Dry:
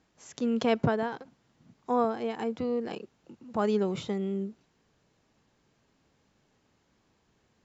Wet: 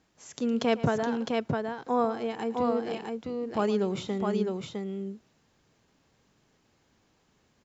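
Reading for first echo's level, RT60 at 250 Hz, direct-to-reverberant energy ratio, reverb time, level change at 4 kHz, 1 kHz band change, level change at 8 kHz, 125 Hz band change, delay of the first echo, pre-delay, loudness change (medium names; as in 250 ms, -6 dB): -16.5 dB, no reverb, no reverb, no reverb, +3.0 dB, +2.0 dB, no reading, +1.5 dB, 112 ms, no reverb, +0.5 dB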